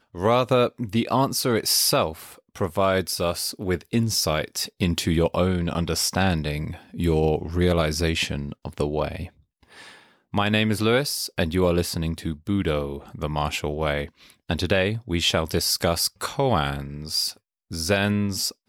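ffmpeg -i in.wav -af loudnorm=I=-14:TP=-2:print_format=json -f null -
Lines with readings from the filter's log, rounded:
"input_i" : "-23.8",
"input_tp" : "-9.2",
"input_lra" : "2.4",
"input_thresh" : "-34.2",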